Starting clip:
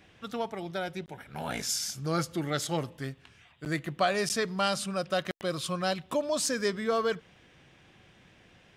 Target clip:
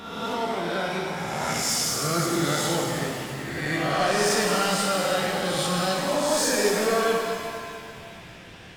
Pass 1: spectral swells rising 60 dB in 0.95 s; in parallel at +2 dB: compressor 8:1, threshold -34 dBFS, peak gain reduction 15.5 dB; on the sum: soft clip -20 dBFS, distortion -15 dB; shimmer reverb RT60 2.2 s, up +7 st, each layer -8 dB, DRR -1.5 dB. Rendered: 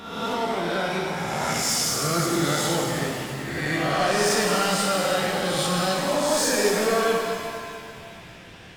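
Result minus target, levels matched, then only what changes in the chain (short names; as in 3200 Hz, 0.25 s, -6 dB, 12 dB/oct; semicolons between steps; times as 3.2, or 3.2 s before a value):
compressor: peak gain reduction -7 dB
change: compressor 8:1, threshold -42 dBFS, peak gain reduction 22.5 dB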